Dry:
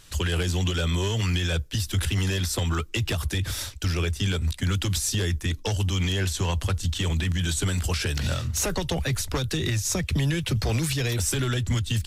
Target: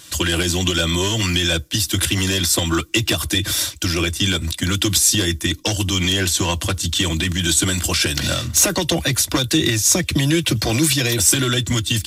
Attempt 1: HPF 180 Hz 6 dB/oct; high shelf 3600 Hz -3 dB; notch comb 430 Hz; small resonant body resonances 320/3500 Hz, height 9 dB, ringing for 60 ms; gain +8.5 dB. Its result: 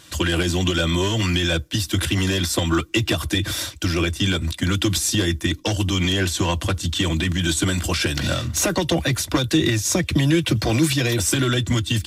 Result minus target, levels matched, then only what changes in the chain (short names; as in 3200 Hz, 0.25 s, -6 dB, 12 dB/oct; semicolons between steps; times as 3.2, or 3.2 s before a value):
8000 Hz band -4.5 dB
change: high shelf 3600 Hz +6.5 dB